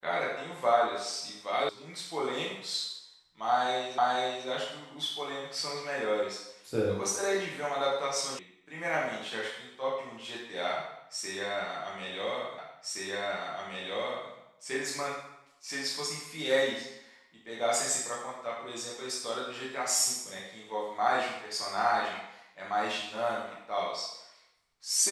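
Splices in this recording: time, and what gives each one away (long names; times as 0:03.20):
0:01.69: cut off before it has died away
0:03.98: the same again, the last 0.49 s
0:08.39: cut off before it has died away
0:12.58: the same again, the last 1.72 s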